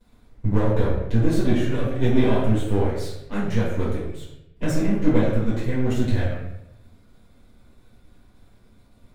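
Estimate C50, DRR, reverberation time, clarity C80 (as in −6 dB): 2.0 dB, −10.0 dB, 0.85 s, 4.5 dB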